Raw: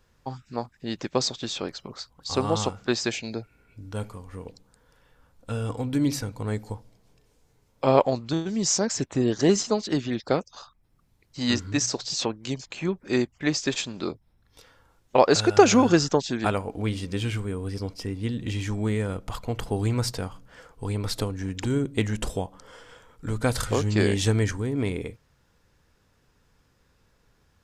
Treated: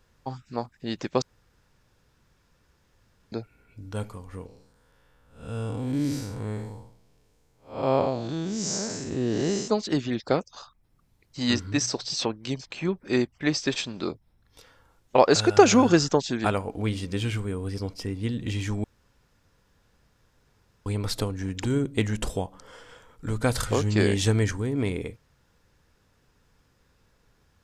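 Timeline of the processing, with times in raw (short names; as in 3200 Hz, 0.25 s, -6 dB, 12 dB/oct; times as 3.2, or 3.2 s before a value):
1.22–3.32 room tone
4.46–9.68 time blur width 0.203 s
11.53–14 notch 6900 Hz, Q 5.5
18.84–20.86 room tone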